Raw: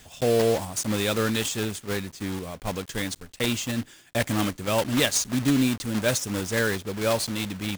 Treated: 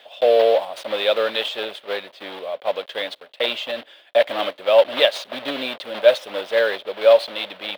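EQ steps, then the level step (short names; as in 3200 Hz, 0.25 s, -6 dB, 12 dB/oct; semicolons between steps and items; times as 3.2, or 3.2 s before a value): resonant high-pass 580 Hz, resonance Q 5; resonant high shelf 4900 Hz -12.5 dB, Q 3; 0.0 dB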